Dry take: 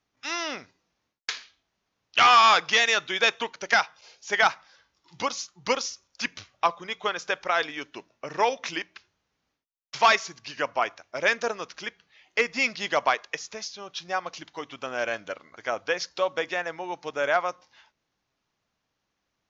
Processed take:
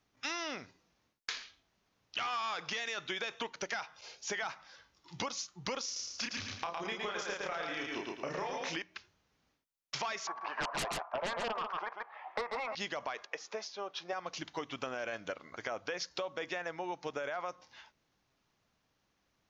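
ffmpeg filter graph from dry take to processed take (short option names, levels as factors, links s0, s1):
-filter_complex "[0:a]asettb=1/sr,asplit=3[s0][s1][s2];[s0]atrim=end=5.854[s3];[s1]atrim=start=5.85:end=8.76,asetpts=PTS-STARTPTS,afade=t=in:d=0.004:c=qsin,afade=t=out:st=2.906:d=0.004:c=qsin,acompressor=threshold=0.0316:ratio=4:attack=3.2:release=140:knee=1:detection=peak,asplit=2[s4][s5];[s5]adelay=31,volume=0.794[s6];[s4][s6]amix=inputs=2:normalize=0,atrim=end_sample=128331,aecho=1:1:111|222|333|444|555:0.631|0.227|0.0818|0.0294|0.0106,atrim=end_sample=128331[s7];[s2]atrim=start=8.756[s8];[s3][s7]acrossfade=d=0.004:c1=hsin:c2=qsin[s9];[s9][s8]acrossfade=d=0.004:c1=qsin:c2=hsin,asettb=1/sr,asplit=3[s10][s11][s12];[s10]atrim=end=10.274[s13];[s11]atrim=start=10.27:end=12.75,asetpts=PTS-STARTPTS,afade=t=in:d=0.004:c=qsin,afade=t=out:st=2.476:d=0.004:c=qsin,asuperpass=centerf=910:order=4:qfactor=1.9,aeval=exprs='0.178*sin(PI/2*8.91*val(0)/0.178)':c=same,aecho=1:1:139:0.266,atrim=end_sample=109368[s14];[s12]atrim=start=12.746[s15];[s13][s14]acrossfade=d=0.004:c1=hsin:c2=qsin[s16];[s16][s15]acrossfade=d=0.004:c1=qsin:c2=hsin,asettb=1/sr,asplit=3[s17][s18][s19];[s17]atrim=end=13.264[s20];[s18]atrim=start=13.26:end=14.13,asetpts=PTS-STARTPTS,afade=t=in:d=0.004:c=qsin,afade=t=out:st=0.866:d=0.004:c=qsin,highpass=590,lowpass=6300,tiltshelf=f=1200:g=8.5[s21];[s19]atrim=start=14.126[s22];[s20][s21]acrossfade=d=0.004:c1=hsin:c2=qsin[s23];[s23][s22]acrossfade=d=0.004:c1=qsin:c2=hsin,lowshelf=f=370:g=3,alimiter=limit=0.1:level=0:latency=1:release=20,acompressor=threshold=0.0158:ratio=6,volume=1.12"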